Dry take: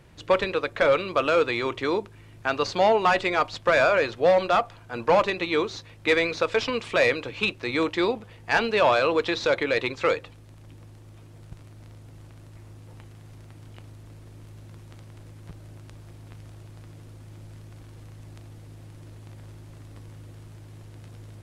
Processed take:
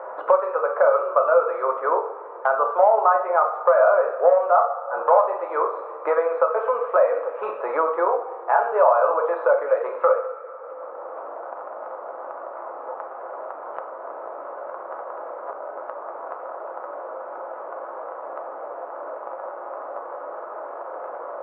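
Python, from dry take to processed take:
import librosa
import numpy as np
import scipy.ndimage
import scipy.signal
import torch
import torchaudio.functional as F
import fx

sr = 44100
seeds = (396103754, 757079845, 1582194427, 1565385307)

y = scipy.signal.sosfilt(scipy.signal.ellip(3, 1.0, 70, [510.0, 1300.0], 'bandpass', fs=sr, output='sos'), x)
y = fx.rev_double_slope(y, sr, seeds[0], early_s=0.47, late_s=1.8, knee_db=-16, drr_db=1.0)
y = fx.band_squash(y, sr, depth_pct=70)
y = F.gain(torch.from_numpy(y), 6.5).numpy()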